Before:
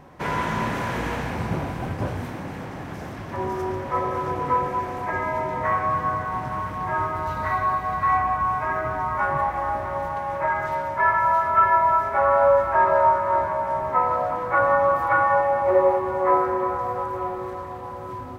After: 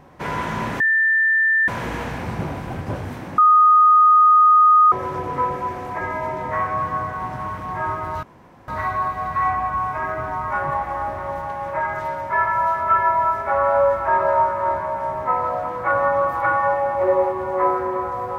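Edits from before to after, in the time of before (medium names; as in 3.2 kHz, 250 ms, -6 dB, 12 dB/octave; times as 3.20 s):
0.80 s: add tone 1.78 kHz -14 dBFS 0.88 s
2.50–4.04 s: bleep 1.24 kHz -9 dBFS
7.35 s: insert room tone 0.45 s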